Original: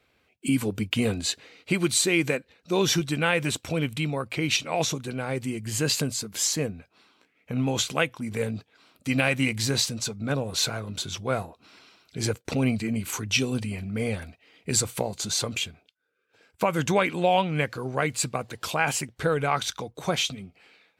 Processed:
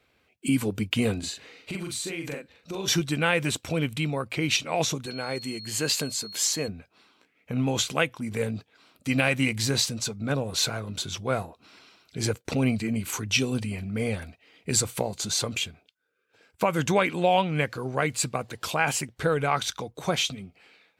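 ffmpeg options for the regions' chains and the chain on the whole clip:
ffmpeg -i in.wav -filter_complex "[0:a]asettb=1/sr,asplit=3[link_01][link_02][link_03];[link_01]atrim=end=1.194[link_04];[link_02]atrim=start=1.19:end=2.88,asetpts=PTS-STARTPTS,afade=type=in:duration=0.004:curve=qsin,afade=type=out:start_time=1.686:duration=0.004:curve=qsin,acompressor=threshold=-31dB:ratio=6:attack=3.2:release=140:knee=1:detection=peak,asplit=2[link_05][link_06];[link_06]adelay=42,volume=-3.5dB[link_07];[link_05][link_07]amix=inputs=2:normalize=0,atrim=end_sample=74529[link_08];[link_03]atrim=start=2.876[link_09];[link_04][link_08]acrossfade=duration=0.004:curve1=hsin:curve2=qsin[link_10];[link_10][link_09]acrossfade=duration=0.004:curve1=qsin:curve2=hsin,asettb=1/sr,asplit=3[link_11][link_12][link_13];[link_11]atrim=end=5.064[link_14];[link_12]atrim=start=5.06:end=6.68,asetpts=PTS-STARTPTS,afade=type=in:duration=0.004:curve=qsin,afade=type=out:start_time=1.616:duration=0.004:curve=qsin,lowshelf=frequency=180:gain=-11,asoftclip=type=hard:threshold=-15.5dB,aeval=exprs='val(0)+0.0112*sin(2*PI*4300*n/s)':channel_layout=same[link_15];[link_13]atrim=start=6.676[link_16];[link_14][link_15]acrossfade=duration=0.004:curve1=hsin:curve2=qsin[link_17];[link_17][link_16]acrossfade=duration=0.004:curve1=qsin:curve2=hsin" out.wav

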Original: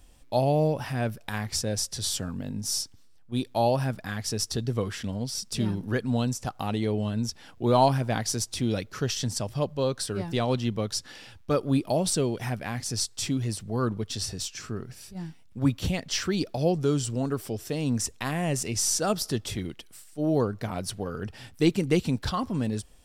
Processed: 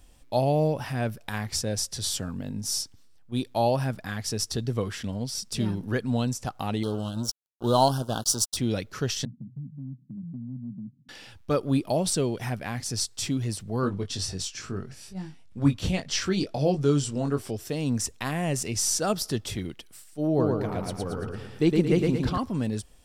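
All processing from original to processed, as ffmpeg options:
ffmpeg -i in.wav -filter_complex "[0:a]asettb=1/sr,asplit=3[link_01][link_02][link_03];[link_01]atrim=end=6.834[link_04];[link_02]atrim=start=6.83:end=8.57,asetpts=PTS-STARTPTS,afade=type=in:duration=0.004:curve=qsin,afade=type=out:start_time=1.736:duration=0.004:curve=qsin,highshelf=frequency=3200:gain=8.5,aeval=exprs='sgn(val(0))*max(abs(val(0))-0.0168,0)':channel_layout=same,asuperstop=centerf=2100:order=8:qfactor=1.5[link_05];[link_03]atrim=start=8.566[link_06];[link_04][link_05]acrossfade=duration=0.004:curve1=hsin:curve2=qsin[link_07];[link_07][link_06]acrossfade=duration=0.004:curve1=qsin:curve2=hsin,asettb=1/sr,asplit=3[link_08][link_09][link_10];[link_08]atrim=end=9.254[link_11];[link_09]atrim=start=9.25:end=11.09,asetpts=PTS-STARTPTS,afade=type=in:duration=0.004:curve=qsin,afade=type=out:start_time=1.836:duration=0.004:curve=qsin,asuperpass=centerf=180:order=12:qfactor=1.2,acompressor=threshold=-35dB:ratio=3:attack=3.2:release=140:knee=1:detection=peak[link_12];[link_10]atrim=start=11.086[link_13];[link_11][link_12]acrossfade=duration=0.004:curve1=hsin:curve2=qsin[link_14];[link_14][link_13]acrossfade=duration=0.004:curve1=qsin:curve2=hsin,asettb=1/sr,asplit=3[link_15][link_16][link_17];[link_15]atrim=end=13.814[link_18];[link_16]atrim=start=13.81:end=17.51,asetpts=PTS-STARTPTS,afade=type=in:duration=0.004:curve=qsin,afade=type=out:start_time=3.696:duration=0.004:curve=qsin,lowpass=10000,asplit=2[link_19][link_20];[link_20]adelay=21,volume=-6dB[link_21];[link_19][link_21]amix=inputs=2:normalize=0,atrim=end_sample=163170[link_22];[link_17]atrim=start=17.506[link_23];[link_18][link_22]acrossfade=duration=0.004:curve1=hsin:curve2=qsin[link_24];[link_24][link_23]acrossfade=duration=0.004:curve1=qsin:curve2=hsin,asettb=1/sr,asplit=3[link_25][link_26][link_27];[link_25]atrim=end=20.274[link_28];[link_26]atrim=start=20.27:end=22.38,asetpts=PTS-STARTPTS,afade=type=in:duration=0.004:curve=qsin,afade=type=out:start_time=2.106:duration=0.004:curve=qsin,highshelf=frequency=2400:gain=-8,aecho=1:1:113|226|339|452|565|678:0.708|0.34|0.163|0.0783|0.0376|0.018,atrim=end_sample=93051[link_29];[link_27]atrim=start=22.376[link_30];[link_28][link_29]acrossfade=duration=0.004:curve1=hsin:curve2=qsin[link_31];[link_31][link_30]acrossfade=duration=0.004:curve1=qsin:curve2=hsin" out.wav

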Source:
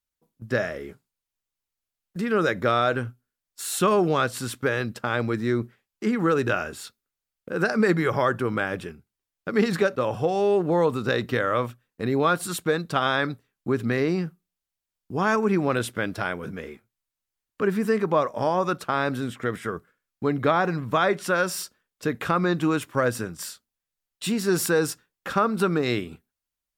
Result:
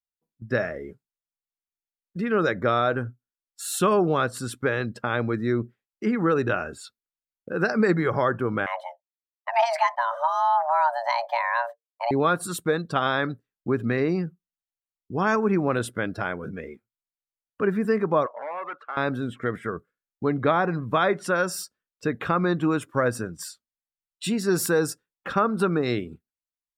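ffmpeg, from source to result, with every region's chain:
ffmpeg -i in.wav -filter_complex "[0:a]asettb=1/sr,asplit=3[link_01][link_02][link_03];[link_01]atrim=end=8.664[link_04];[link_02]atrim=start=8.66:end=12.11,asetpts=PTS-STARTPTS,afade=type=in:duration=0.004:curve=qsin,afade=type=out:start_time=3.446:duration=0.004:curve=qsin,agate=range=-33dB:threshold=-37dB:ratio=3:release=100:detection=peak,afreqshift=460[link_05];[link_03]atrim=start=12.106[link_06];[link_04][link_05]acrossfade=duration=0.004:curve1=hsin:curve2=qsin[link_07];[link_07][link_06]acrossfade=duration=0.004:curve1=qsin:curve2=hsin,asettb=1/sr,asplit=3[link_08][link_09][link_10];[link_08]atrim=end=18.264[link_11];[link_09]atrim=start=18.26:end=18.97,asetpts=PTS-STARTPTS,afade=type=in:duration=0.004:curve=qsin,afade=type=out:start_time=0.706:duration=0.004:curve=qsin,volume=26dB,asoftclip=hard,volume=-26dB,highpass=670,lowpass=2200[link_12];[link_10]atrim=start=18.966[link_13];[link_11][link_12]acrossfade=duration=0.004:curve1=hsin:curve2=qsin[link_14];[link_14][link_13]acrossfade=duration=0.004:curve1=qsin:curve2=hsin,afftdn=noise_reduction=15:noise_floor=-42,adynamicequalizer=threshold=0.00708:dfrequency=2800:dqfactor=1.2:tfrequency=2800:tqfactor=1.2:attack=5:release=100:ratio=0.375:range=3:mode=cutabove:tftype=bell" out.wav

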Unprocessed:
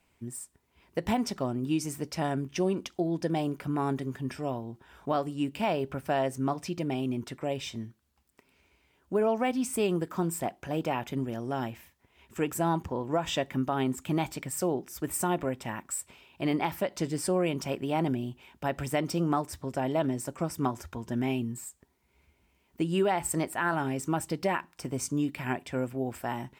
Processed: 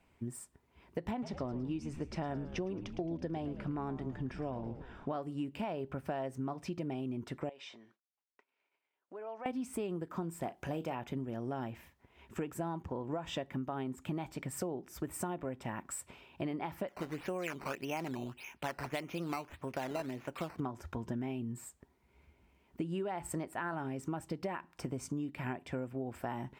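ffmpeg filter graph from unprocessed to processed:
ffmpeg -i in.wav -filter_complex "[0:a]asettb=1/sr,asplit=3[link_01][link_02][link_03];[link_01]atrim=end=1.114[link_04];[link_02]atrim=start=1.11:end=5.11,asetpts=PTS-STARTPTS,afade=type=in:duration=0.004:curve=qsin,afade=type=out:start_time=3.996:duration=0.004:curve=qsin,lowpass=5900,asplit=7[link_05][link_06][link_07][link_08][link_09][link_10][link_11];[link_06]adelay=110,afreqshift=-82,volume=-13.5dB[link_12];[link_07]adelay=220,afreqshift=-164,volume=-18.7dB[link_13];[link_08]adelay=330,afreqshift=-246,volume=-23.9dB[link_14];[link_09]adelay=440,afreqshift=-328,volume=-29.1dB[link_15];[link_10]adelay=550,afreqshift=-410,volume=-34.3dB[link_16];[link_11]adelay=660,afreqshift=-492,volume=-39.5dB[link_17];[link_05][link_12][link_13][link_14][link_15][link_16][link_17]amix=inputs=7:normalize=0,atrim=end_sample=176400[link_18];[link_03]atrim=start=5.106[link_19];[link_04][link_18]acrossfade=duration=0.004:curve1=hsin:curve2=qsin[link_20];[link_20][link_19]acrossfade=duration=0.004:curve1=qsin:curve2=hsin,asettb=1/sr,asplit=3[link_21][link_22][link_23];[link_21]atrim=end=7.494[link_24];[link_22]atrim=start=7.49:end=9.46,asetpts=PTS-STARTPTS,afade=type=in:duration=0.004:curve=qsin,afade=type=out:start_time=1.966:duration=0.004:curve=qsin,agate=range=-33dB:threshold=-58dB:ratio=3:release=100:detection=peak,acompressor=threshold=-40dB:ratio=4:attack=3.2:release=140:knee=1:detection=peak,highpass=580,lowpass=5500[link_25];[link_23]atrim=start=9.456[link_26];[link_24][link_25]acrossfade=duration=0.004:curve1=hsin:curve2=qsin[link_27];[link_27][link_26]acrossfade=duration=0.004:curve1=qsin:curve2=hsin,asettb=1/sr,asplit=3[link_28][link_29][link_30];[link_28]atrim=end=10.424[link_31];[link_29]atrim=start=10.42:end=10.95,asetpts=PTS-STARTPTS,afade=type=in:duration=0.004:curve=qsin,afade=type=out:start_time=0.526:duration=0.004:curve=qsin,highshelf=frequency=4300:gain=8,asplit=2[link_32][link_33];[link_33]adelay=36,volume=-13dB[link_34];[link_32][link_34]amix=inputs=2:normalize=0,atrim=end_sample=23373[link_35];[link_30]atrim=start=10.946[link_36];[link_31][link_35]acrossfade=duration=0.004:curve1=hsin:curve2=qsin[link_37];[link_37][link_36]acrossfade=duration=0.004:curve1=qsin:curve2=hsin,asettb=1/sr,asplit=3[link_38][link_39][link_40];[link_38]atrim=end=16.884[link_41];[link_39]atrim=start=16.88:end=20.6,asetpts=PTS-STARTPTS,afade=type=in:duration=0.004:curve=qsin,afade=type=out:start_time=3.716:duration=0.004:curve=qsin,lowpass=frequency=2600:width_type=q:width=3.8,lowshelf=frequency=450:gain=-8.5,acrusher=samples=9:mix=1:aa=0.000001:lfo=1:lforange=9:lforate=1.7[link_42];[link_40]atrim=start=20.596[link_43];[link_41][link_42]acrossfade=duration=0.004:curve1=hsin:curve2=qsin[link_44];[link_44][link_43]acrossfade=duration=0.004:curve1=qsin:curve2=hsin,highshelf=frequency=3100:gain=-10.5,acompressor=threshold=-37dB:ratio=6,volume=2dB" out.wav

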